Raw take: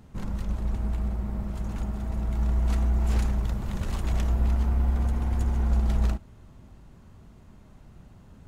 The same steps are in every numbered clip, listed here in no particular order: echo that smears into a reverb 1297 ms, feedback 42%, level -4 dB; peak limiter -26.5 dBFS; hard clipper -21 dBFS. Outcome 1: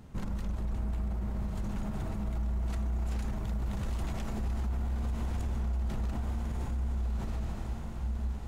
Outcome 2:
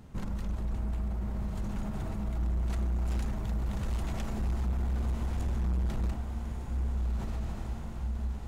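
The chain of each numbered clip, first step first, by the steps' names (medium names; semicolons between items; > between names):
echo that smears into a reverb > peak limiter > hard clipper; echo that smears into a reverb > hard clipper > peak limiter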